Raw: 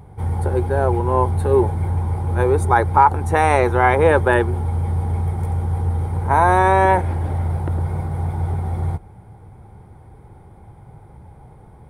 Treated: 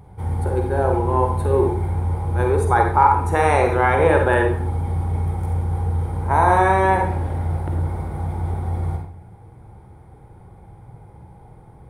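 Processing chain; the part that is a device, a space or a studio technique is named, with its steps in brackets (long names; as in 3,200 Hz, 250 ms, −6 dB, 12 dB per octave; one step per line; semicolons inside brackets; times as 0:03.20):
bathroom (convolution reverb RT60 0.55 s, pre-delay 41 ms, DRR 2.5 dB)
level −3 dB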